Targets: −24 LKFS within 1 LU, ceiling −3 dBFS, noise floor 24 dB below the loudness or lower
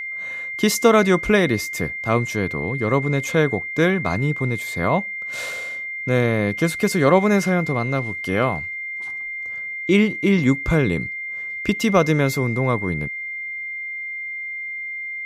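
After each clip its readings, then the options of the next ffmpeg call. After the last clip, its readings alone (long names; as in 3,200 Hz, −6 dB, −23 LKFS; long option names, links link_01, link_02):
interfering tone 2,100 Hz; level of the tone −27 dBFS; integrated loudness −21.0 LKFS; sample peak −3.5 dBFS; target loudness −24.0 LKFS
→ -af "bandreject=frequency=2100:width=30"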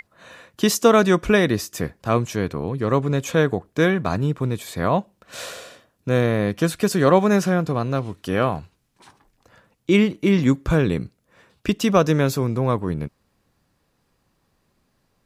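interfering tone none found; integrated loudness −20.5 LKFS; sample peak −3.5 dBFS; target loudness −24.0 LKFS
→ -af "volume=-3.5dB"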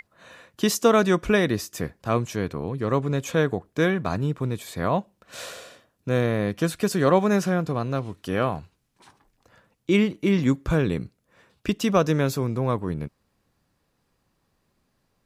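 integrated loudness −24.0 LKFS; sample peak −7.0 dBFS; background noise floor −72 dBFS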